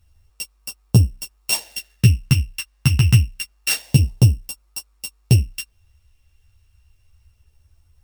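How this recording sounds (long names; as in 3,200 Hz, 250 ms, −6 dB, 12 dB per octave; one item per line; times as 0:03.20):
a buzz of ramps at a fixed pitch in blocks of 16 samples
phaser sweep stages 2, 0.27 Hz, lowest notch 490–1,900 Hz
a quantiser's noise floor 12 bits, dither none
a shimmering, thickened sound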